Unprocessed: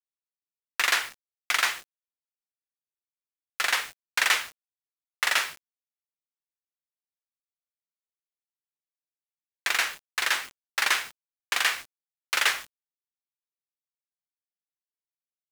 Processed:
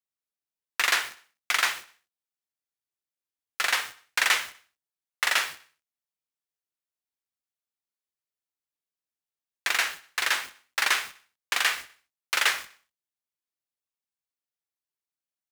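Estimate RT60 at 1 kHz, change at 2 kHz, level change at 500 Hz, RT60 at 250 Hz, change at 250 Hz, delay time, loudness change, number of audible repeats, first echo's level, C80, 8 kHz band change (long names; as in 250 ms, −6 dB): no reverb audible, 0.0 dB, 0.0 dB, no reverb audible, 0.0 dB, 62 ms, 0.0 dB, 3, −18.5 dB, no reverb audible, 0.0 dB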